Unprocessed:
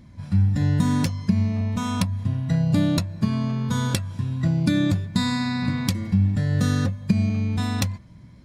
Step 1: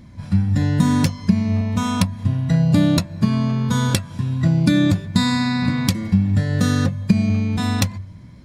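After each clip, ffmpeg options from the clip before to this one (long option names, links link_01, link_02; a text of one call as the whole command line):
ffmpeg -i in.wav -af "bandreject=frequency=48.09:width_type=h:width=4,bandreject=frequency=96.18:width_type=h:width=4,bandreject=frequency=144.27:width_type=h:width=4,volume=5dB" out.wav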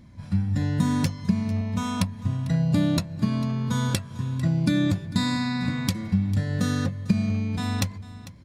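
ffmpeg -i in.wav -af "aecho=1:1:448:0.133,volume=-6.5dB" out.wav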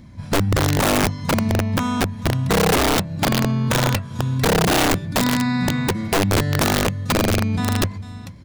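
ffmpeg -i in.wav -filter_complex "[0:a]acrossover=split=2700[link_01][link_02];[link_02]acompressor=threshold=-43dB:ratio=4:attack=1:release=60[link_03];[link_01][link_03]amix=inputs=2:normalize=0,aeval=exprs='(mod(8.41*val(0)+1,2)-1)/8.41':channel_layout=same,volume=6.5dB" out.wav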